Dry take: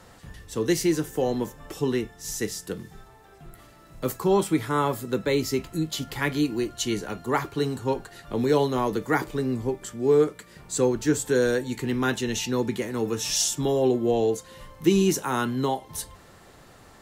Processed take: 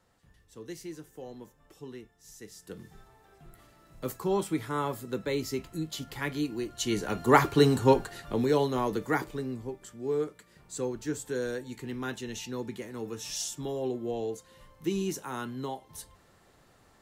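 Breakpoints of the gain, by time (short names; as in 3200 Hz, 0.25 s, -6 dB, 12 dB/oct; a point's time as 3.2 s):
2.44 s -18.5 dB
2.84 s -7 dB
6.64 s -7 dB
7.33 s +5 dB
7.92 s +5 dB
8.51 s -4 dB
9.09 s -4 dB
9.65 s -10.5 dB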